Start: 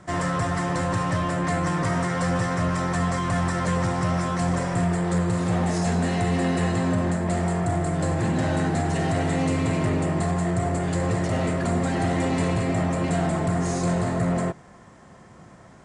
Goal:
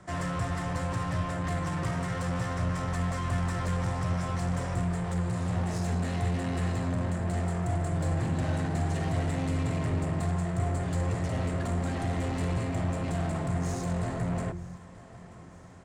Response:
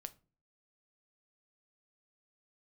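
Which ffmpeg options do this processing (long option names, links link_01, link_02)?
-filter_complex "[0:a]lowshelf=frequency=100:gain=5.5,bandreject=frequency=50:width_type=h:width=6,bandreject=frequency=100:width_type=h:width=6,bandreject=frequency=150:width_type=h:width=6,bandreject=frequency=200:width_type=h:width=6,bandreject=frequency=250:width_type=h:width=6,bandreject=frequency=300:width_type=h:width=6,bandreject=frequency=350:width_type=h:width=6,acrossover=split=140[link_01][link_02];[link_01]aecho=1:1:249:0.668[link_03];[link_02]asoftclip=type=tanh:threshold=-26dB[link_04];[link_03][link_04]amix=inputs=2:normalize=0,aecho=1:1:934|1868|2802|3736|4670:0.0944|0.0557|0.0329|0.0194|0.0114,volume=-4.5dB"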